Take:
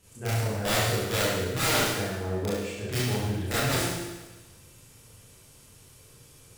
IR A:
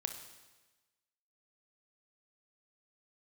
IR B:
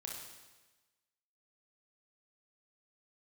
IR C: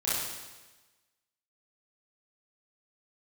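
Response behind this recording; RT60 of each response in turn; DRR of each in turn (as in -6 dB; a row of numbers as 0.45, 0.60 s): C; 1.2, 1.2, 1.2 s; 6.0, -1.5, -10.0 dB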